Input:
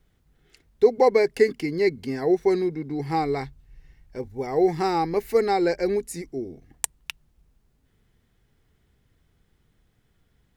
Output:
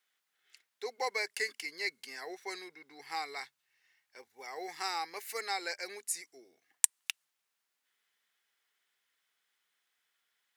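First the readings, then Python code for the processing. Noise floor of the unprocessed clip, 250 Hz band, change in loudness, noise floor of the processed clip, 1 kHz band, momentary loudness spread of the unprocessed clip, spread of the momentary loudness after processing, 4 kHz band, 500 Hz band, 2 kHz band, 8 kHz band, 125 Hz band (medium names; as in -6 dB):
-67 dBFS, -28.0 dB, -12.5 dB, -84 dBFS, -12.5 dB, 16 LU, 17 LU, -1.0 dB, -23.0 dB, -3.5 dB, +2.5 dB, under -40 dB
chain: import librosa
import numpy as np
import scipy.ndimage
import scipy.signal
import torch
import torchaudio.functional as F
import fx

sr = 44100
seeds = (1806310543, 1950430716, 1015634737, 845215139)

y = scipy.signal.sosfilt(scipy.signal.butter(2, 1400.0, 'highpass', fs=sr, output='sos'), x)
y = fx.dynamic_eq(y, sr, hz=8600.0, q=0.8, threshold_db=-54.0, ratio=4.0, max_db=6)
y = y * librosa.db_to_amplitude(-3.0)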